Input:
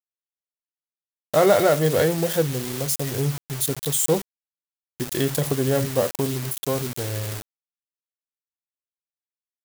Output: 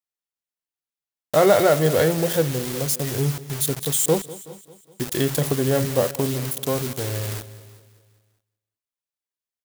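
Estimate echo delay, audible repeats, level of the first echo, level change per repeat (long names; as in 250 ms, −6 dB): 197 ms, 4, −18.5 dB, repeats not evenly spaced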